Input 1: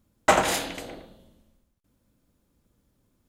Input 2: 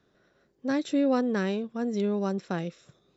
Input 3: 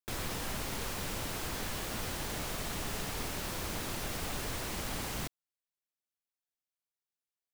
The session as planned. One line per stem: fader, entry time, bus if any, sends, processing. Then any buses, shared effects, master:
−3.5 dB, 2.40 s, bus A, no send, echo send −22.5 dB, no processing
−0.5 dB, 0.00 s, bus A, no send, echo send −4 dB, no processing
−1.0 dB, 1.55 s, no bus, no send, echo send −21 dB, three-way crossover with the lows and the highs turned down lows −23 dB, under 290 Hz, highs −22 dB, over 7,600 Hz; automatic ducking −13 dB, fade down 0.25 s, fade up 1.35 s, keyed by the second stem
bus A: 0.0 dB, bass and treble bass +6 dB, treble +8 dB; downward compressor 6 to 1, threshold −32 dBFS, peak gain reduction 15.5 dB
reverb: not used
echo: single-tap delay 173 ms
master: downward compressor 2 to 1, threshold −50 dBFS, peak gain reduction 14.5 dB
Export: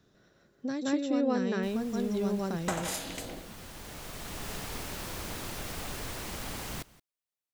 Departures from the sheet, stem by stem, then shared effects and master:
stem 3: missing three-way crossover with the lows and the highs turned down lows −23 dB, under 290 Hz, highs −22 dB, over 7,600 Hz
master: missing downward compressor 2 to 1, threshold −50 dBFS, peak gain reduction 14.5 dB

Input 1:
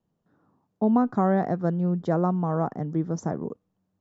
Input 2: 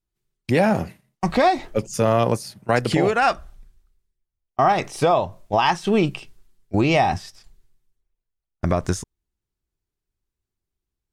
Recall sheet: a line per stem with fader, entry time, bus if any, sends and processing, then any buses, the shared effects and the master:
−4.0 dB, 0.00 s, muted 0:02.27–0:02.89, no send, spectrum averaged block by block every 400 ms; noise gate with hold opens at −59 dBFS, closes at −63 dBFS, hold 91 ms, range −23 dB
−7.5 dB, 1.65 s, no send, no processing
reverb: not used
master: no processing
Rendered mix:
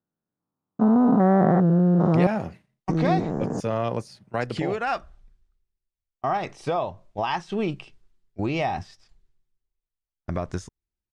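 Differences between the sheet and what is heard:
stem 1 −4.0 dB → +7.5 dB
master: extra high-frequency loss of the air 68 metres

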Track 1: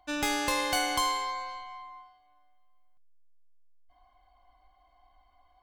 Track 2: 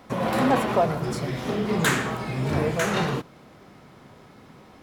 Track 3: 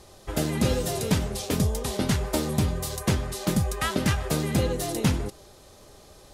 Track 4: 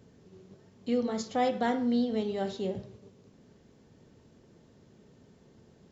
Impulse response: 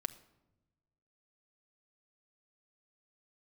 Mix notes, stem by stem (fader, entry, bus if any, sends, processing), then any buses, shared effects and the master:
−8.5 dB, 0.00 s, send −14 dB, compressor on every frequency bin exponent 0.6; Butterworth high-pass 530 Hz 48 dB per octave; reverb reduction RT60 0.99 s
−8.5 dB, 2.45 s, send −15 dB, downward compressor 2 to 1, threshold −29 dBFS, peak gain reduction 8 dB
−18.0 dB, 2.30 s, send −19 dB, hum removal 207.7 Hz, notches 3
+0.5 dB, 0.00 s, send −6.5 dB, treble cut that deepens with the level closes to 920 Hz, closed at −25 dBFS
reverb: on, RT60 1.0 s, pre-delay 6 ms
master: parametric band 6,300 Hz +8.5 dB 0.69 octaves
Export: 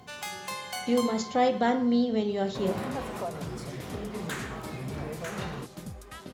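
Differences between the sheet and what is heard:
stem 4: missing treble cut that deepens with the level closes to 920 Hz, closed at −25 dBFS
master: missing parametric band 6,300 Hz +8.5 dB 0.69 octaves

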